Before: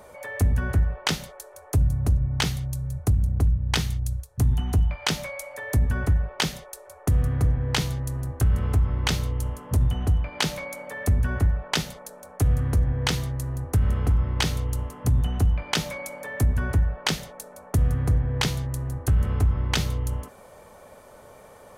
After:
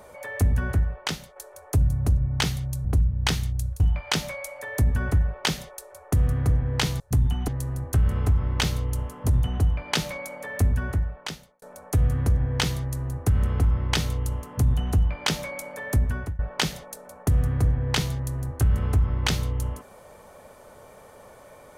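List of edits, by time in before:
0.61–1.36 s: fade out, to -8 dB
2.85–3.32 s: delete
4.27–4.75 s: move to 7.95 s
11.12–12.09 s: fade out
16.35–16.86 s: fade out equal-power, to -23.5 dB

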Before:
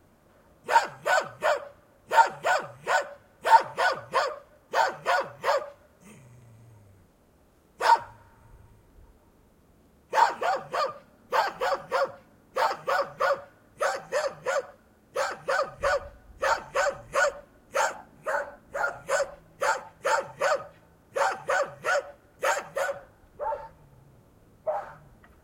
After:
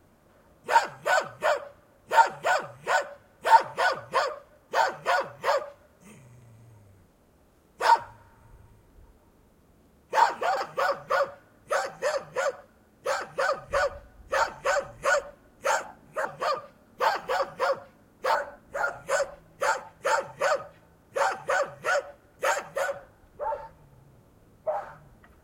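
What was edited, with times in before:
10.57–12.67 s: move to 18.35 s

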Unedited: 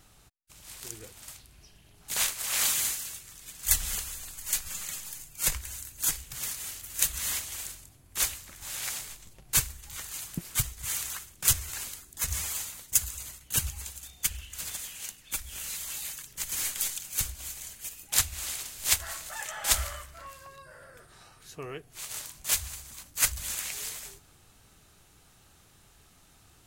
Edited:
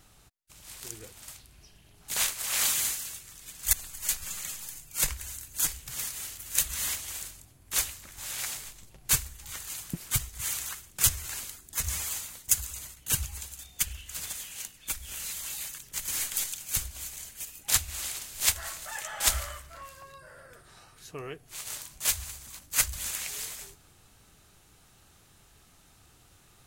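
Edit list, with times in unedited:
3.73–4.17 s: delete

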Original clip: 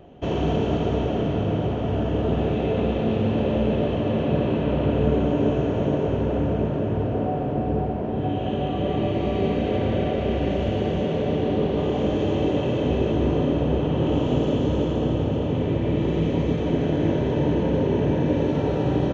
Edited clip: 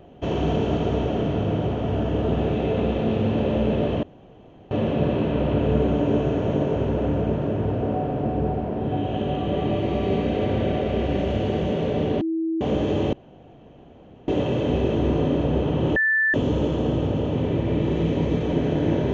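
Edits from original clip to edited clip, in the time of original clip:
4.03 s: insert room tone 0.68 s
11.53–11.93 s: bleep 325 Hz -21.5 dBFS
12.45 s: insert room tone 1.15 s
14.13–14.51 s: bleep 1.76 kHz -17 dBFS

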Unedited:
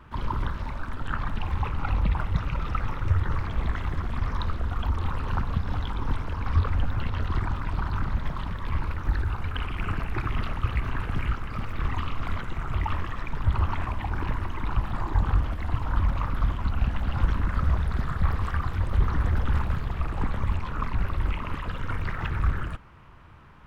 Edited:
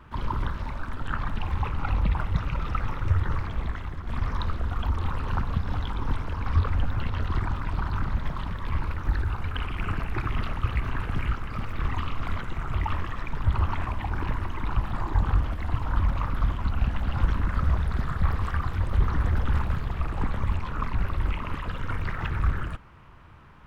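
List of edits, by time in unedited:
3.30–4.07 s: fade out, to -8 dB

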